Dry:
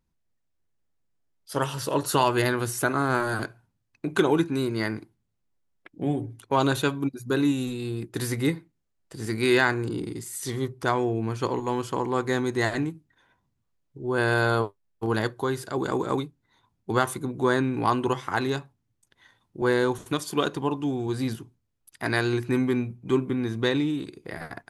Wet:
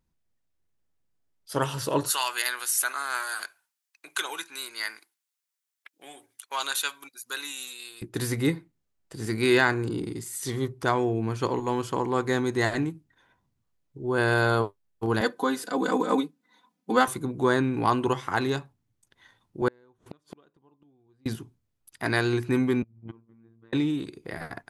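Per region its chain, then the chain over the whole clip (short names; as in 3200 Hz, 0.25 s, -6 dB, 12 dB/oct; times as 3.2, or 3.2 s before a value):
2.1–8.02 HPF 1400 Hz + high shelf 5500 Hz +10 dB
15.21–17.08 HPF 170 Hz 24 dB/oct + comb 4 ms, depth 95%
19.68–21.26 LPF 2000 Hz 6 dB/oct + flipped gate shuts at -25 dBFS, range -35 dB + Doppler distortion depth 0.59 ms
22.82–23.73 LPF 1500 Hz + flipped gate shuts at -24 dBFS, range -28 dB + robotiser 114 Hz
whole clip: dry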